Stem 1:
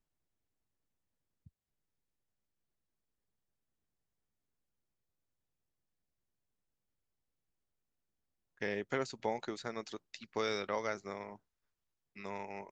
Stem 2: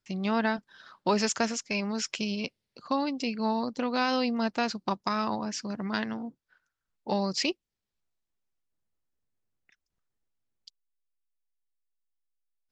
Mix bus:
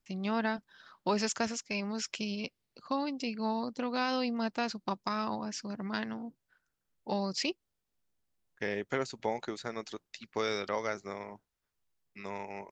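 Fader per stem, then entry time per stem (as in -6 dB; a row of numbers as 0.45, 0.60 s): +2.5, -4.5 dB; 0.00, 0.00 s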